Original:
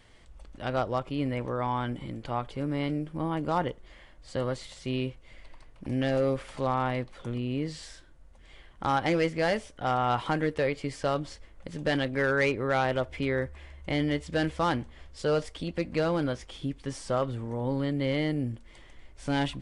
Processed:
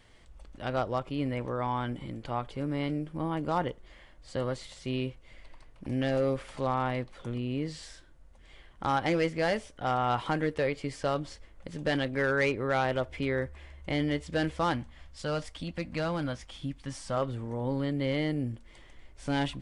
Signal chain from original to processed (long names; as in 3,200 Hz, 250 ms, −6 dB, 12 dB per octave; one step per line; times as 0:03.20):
0:14.73–0:17.17: parametric band 410 Hz −11.5 dB 0.52 octaves
level −1.5 dB